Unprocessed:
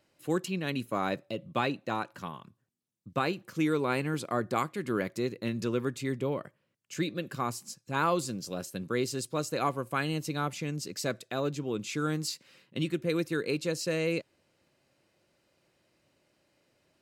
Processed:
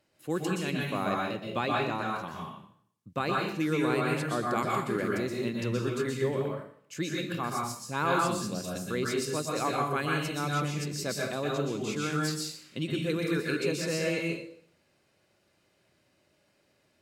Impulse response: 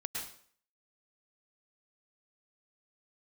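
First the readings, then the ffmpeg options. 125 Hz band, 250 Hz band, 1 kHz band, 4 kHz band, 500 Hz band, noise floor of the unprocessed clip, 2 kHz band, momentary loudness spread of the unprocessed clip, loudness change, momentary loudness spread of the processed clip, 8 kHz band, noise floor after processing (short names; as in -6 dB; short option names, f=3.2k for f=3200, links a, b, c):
+2.0 dB, +1.0 dB, +2.5 dB, +2.0 dB, +1.5 dB, -75 dBFS, +3.0 dB, 7 LU, +1.5 dB, 7 LU, +2.0 dB, -70 dBFS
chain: -filter_complex "[1:a]atrim=start_sample=2205,asetrate=38367,aresample=44100[a];[0:a][a]afir=irnorm=-1:irlink=0"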